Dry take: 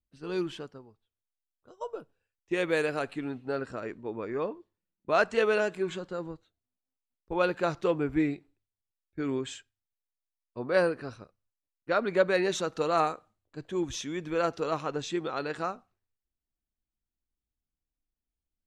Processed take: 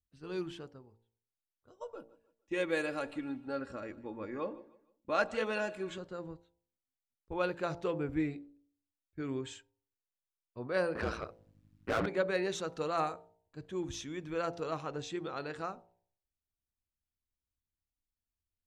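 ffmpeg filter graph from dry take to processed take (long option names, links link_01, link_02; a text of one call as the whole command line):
ffmpeg -i in.wav -filter_complex "[0:a]asettb=1/sr,asplit=3[link_01][link_02][link_03];[link_01]atrim=end=1.824[link_04];[link_02]atrim=start=1.82:end=5.98,asetpts=PTS-STARTPTS,afade=type=in:duration=0.004:curve=qsin,afade=type=out:start_time=4.156:duration=0.004:curve=qsin,aecho=1:1:3.6:0.57,atrim=end_sample=183456,aecho=1:1:153|306|459:0.0944|0.0349|0.0129,atrim=end_sample=183456[link_05];[link_03]atrim=start=5.976[link_06];[link_04][link_05]acrossfade=duration=0.004:curve1=hsin:curve2=qsin[link_07];[link_07][link_06]acrossfade=duration=0.004:curve1=qsin:curve2=hsin,asettb=1/sr,asplit=3[link_08][link_09][link_10];[link_08]atrim=end=10.954[link_11];[link_09]atrim=start=10.95:end=12.06,asetpts=PTS-STARTPTS,afade=type=in:duration=0.004:curve=qsin,afade=type=out:start_time=1.106:duration=0.004:curve=qsin,aeval=exprs='val(0)+0.000447*(sin(2*PI*50*n/s)+sin(2*PI*2*50*n/s)/2+sin(2*PI*3*50*n/s)/3+sin(2*PI*4*50*n/s)/4+sin(2*PI*5*50*n/s)/5)':channel_layout=same,asplit=2[link_12][link_13];[link_13]highpass=frequency=720:poles=1,volume=33dB,asoftclip=type=tanh:threshold=-15dB[link_14];[link_12][link_14]amix=inputs=2:normalize=0,lowpass=frequency=1800:poles=1,volume=-6dB,aeval=exprs='val(0)*sin(2*PI*56*n/s)':channel_layout=same[link_15];[link_10]atrim=start=12.056[link_16];[link_11][link_15]acrossfade=duration=0.004:curve1=hsin:curve2=qsin[link_17];[link_17][link_16]acrossfade=duration=0.004:curve1=qsin:curve2=hsin,equalizer=frequency=86:width=1.3:gain=9,bandreject=frequency=57.1:width_type=h:width=4,bandreject=frequency=114.2:width_type=h:width=4,bandreject=frequency=171.3:width_type=h:width=4,bandreject=frequency=228.4:width_type=h:width=4,bandreject=frequency=285.5:width_type=h:width=4,bandreject=frequency=342.6:width_type=h:width=4,bandreject=frequency=399.7:width_type=h:width=4,bandreject=frequency=456.8:width_type=h:width=4,bandreject=frequency=513.9:width_type=h:width=4,bandreject=frequency=571:width_type=h:width=4,bandreject=frequency=628.1:width_type=h:width=4,bandreject=frequency=685.2:width_type=h:width=4,bandreject=frequency=742.3:width_type=h:width=4,bandreject=frequency=799.4:width_type=h:width=4,bandreject=frequency=856.5:width_type=h:width=4,bandreject=frequency=913.6:width_type=h:width=4,bandreject=frequency=970.7:width_type=h:width=4,volume=-6.5dB" out.wav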